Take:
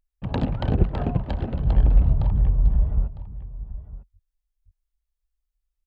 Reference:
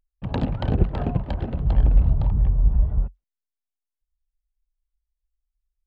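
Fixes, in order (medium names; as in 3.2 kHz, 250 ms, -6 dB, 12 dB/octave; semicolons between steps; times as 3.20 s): de-plosive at 0.55/3.17/3.69 s; inverse comb 954 ms -16.5 dB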